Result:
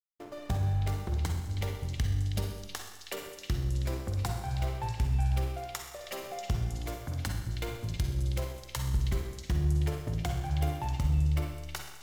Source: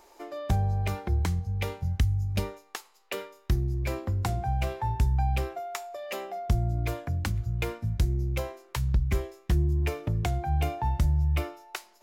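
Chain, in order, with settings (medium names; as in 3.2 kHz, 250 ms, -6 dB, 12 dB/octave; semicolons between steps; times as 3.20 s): treble shelf 5.7 kHz +11 dB; band-stop 2.5 kHz, Q 5.5; in parallel at 0 dB: compression, threshold -36 dBFS, peak gain reduction 16 dB; on the sum: hysteresis with a dead band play -27.5 dBFS; repeats whose band climbs or falls 319 ms, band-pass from 3.2 kHz, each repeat 0.7 oct, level -3.5 dB; on a send at -3 dB: reverberation RT60 1.1 s, pre-delay 42 ms; on the sum: trim -7.5 dB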